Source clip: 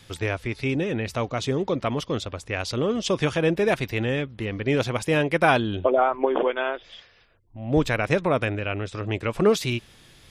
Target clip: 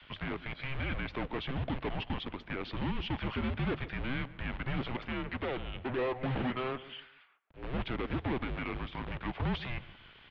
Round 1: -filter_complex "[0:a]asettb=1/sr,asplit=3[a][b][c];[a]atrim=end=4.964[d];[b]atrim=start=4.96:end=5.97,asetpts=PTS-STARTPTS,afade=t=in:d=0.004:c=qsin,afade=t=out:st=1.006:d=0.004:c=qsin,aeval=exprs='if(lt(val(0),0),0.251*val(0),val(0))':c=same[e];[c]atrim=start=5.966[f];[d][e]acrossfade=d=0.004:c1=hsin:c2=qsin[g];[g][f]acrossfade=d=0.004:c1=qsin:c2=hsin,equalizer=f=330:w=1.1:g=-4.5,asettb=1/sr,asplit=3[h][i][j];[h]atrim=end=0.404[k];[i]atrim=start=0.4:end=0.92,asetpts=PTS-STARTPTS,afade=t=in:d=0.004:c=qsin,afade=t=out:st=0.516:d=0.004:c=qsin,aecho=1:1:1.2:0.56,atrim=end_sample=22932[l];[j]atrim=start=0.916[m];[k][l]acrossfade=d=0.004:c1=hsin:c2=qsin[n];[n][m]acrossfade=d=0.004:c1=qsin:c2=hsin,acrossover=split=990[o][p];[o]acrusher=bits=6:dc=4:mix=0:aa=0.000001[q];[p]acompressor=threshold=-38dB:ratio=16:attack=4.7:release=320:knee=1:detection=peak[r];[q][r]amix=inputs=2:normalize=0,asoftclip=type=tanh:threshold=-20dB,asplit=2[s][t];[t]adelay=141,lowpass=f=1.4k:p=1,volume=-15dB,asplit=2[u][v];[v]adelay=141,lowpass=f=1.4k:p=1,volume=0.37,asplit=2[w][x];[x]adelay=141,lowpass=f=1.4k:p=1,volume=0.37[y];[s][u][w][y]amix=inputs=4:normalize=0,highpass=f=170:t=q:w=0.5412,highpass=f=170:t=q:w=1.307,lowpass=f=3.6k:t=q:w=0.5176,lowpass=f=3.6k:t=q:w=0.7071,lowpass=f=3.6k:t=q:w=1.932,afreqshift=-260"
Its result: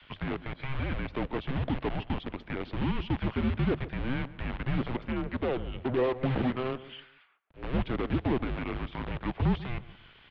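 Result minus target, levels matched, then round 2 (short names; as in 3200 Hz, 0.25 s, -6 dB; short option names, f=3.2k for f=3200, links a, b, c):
compressor: peak gain reduction +8.5 dB; soft clip: distortion -8 dB
-filter_complex "[0:a]asettb=1/sr,asplit=3[a][b][c];[a]atrim=end=4.964[d];[b]atrim=start=4.96:end=5.97,asetpts=PTS-STARTPTS,afade=t=in:d=0.004:c=qsin,afade=t=out:st=1.006:d=0.004:c=qsin,aeval=exprs='if(lt(val(0),0),0.251*val(0),val(0))':c=same[e];[c]atrim=start=5.966[f];[d][e]acrossfade=d=0.004:c1=hsin:c2=qsin[g];[g][f]acrossfade=d=0.004:c1=qsin:c2=hsin,equalizer=f=330:w=1.1:g=-4.5,asettb=1/sr,asplit=3[h][i][j];[h]atrim=end=0.404[k];[i]atrim=start=0.4:end=0.92,asetpts=PTS-STARTPTS,afade=t=in:d=0.004:c=qsin,afade=t=out:st=0.516:d=0.004:c=qsin,aecho=1:1:1.2:0.56,atrim=end_sample=22932[l];[j]atrim=start=0.916[m];[k][l]acrossfade=d=0.004:c1=hsin:c2=qsin[n];[n][m]acrossfade=d=0.004:c1=qsin:c2=hsin,acrossover=split=990[o][p];[o]acrusher=bits=6:dc=4:mix=0:aa=0.000001[q];[p]acompressor=threshold=-29dB:ratio=16:attack=4.7:release=320:knee=1:detection=peak[r];[q][r]amix=inputs=2:normalize=0,asoftclip=type=tanh:threshold=-29dB,asplit=2[s][t];[t]adelay=141,lowpass=f=1.4k:p=1,volume=-15dB,asplit=2[u][v];[v]adelay=141,lowpass=f=1.4k:p=1,volume=0.37,asplit=2[w][x];[x]adelay=141,lowpass=f=1.4k:p=1,volume=0.37[y];[s][u][w][y]amix=inputs=4:normalize=0,highpass=f=170:t=q:w=0.5412,highpass=f=170:t=q:w=1.307,lowpass=f=3.6k:t=q:w=0.5176,lowpass=f=3.6k:t=q:w=0.7071,lowpass=f=3.6k:t=q:w=1.932,afreqshift=-260"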